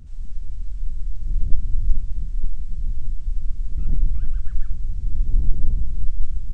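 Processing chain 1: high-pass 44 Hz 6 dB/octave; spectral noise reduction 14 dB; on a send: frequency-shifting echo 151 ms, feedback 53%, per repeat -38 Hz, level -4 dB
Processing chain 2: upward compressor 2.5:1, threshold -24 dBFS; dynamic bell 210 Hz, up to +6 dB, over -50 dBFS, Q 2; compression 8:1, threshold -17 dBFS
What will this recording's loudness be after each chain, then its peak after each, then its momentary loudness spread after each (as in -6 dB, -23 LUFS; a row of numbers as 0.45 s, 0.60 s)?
-31.5 LUFS, -34.5 LUFS; -8.0 dBFS, -12.5 dBFS; 7 LU, 5 LU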